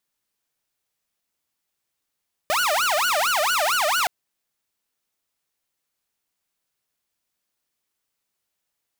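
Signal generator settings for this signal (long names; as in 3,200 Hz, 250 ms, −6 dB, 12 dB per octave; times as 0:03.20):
siren wail 591–1,480 Hz 4.4 per second saw −16.5 dBFS 1.57 s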